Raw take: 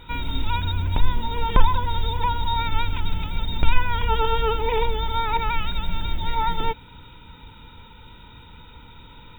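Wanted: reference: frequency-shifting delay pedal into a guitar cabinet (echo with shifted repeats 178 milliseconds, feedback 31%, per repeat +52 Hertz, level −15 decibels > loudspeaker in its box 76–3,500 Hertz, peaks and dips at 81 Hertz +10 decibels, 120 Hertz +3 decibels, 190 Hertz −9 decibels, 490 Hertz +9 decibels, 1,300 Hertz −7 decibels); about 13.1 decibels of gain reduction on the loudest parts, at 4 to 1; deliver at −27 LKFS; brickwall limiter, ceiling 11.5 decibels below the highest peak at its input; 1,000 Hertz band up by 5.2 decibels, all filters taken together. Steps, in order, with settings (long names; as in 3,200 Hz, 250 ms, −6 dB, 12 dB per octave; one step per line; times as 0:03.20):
parametric band 1,000 Hz +6.5 dB
downward compressor 4 to 1, threshold −23 dBFS
brickwall limiter −20 dBFS
echo with shifted repeats 178 ms, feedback 31%, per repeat +52 Hz, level −15 dB
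loudspeaker in its box 76–3,500 Hz, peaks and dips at 81 Hz +10 dB, 120 Hz +3 dB, 190 Hz −9 dB, 490 Hz +9 dB, 1,300 Hz −7 dB
level +3.5 dB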